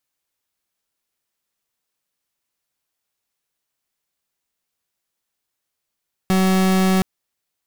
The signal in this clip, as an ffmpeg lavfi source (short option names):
-f lavfi -i "aevalsrc='0.158*(2*lt(mod(188*t,1),0.38)-1)':d=0.72:s=44100"